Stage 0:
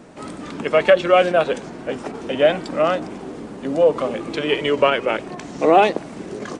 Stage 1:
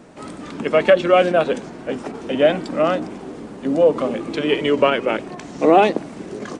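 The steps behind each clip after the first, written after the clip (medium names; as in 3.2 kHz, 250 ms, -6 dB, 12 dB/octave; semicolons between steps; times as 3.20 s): dynamic bell 250 Hz, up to +6 dB, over -31 dBFS, Q 1.1; trim -1 dB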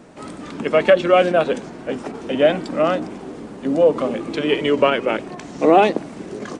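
no audible change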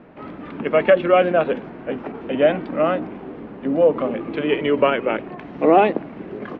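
low-pass 2.8 kHz 24 dB/octave; trim -1 dB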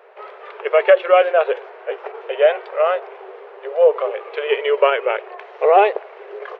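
brick-wall FIR high-pass 380 Hz; trim +2.5 dB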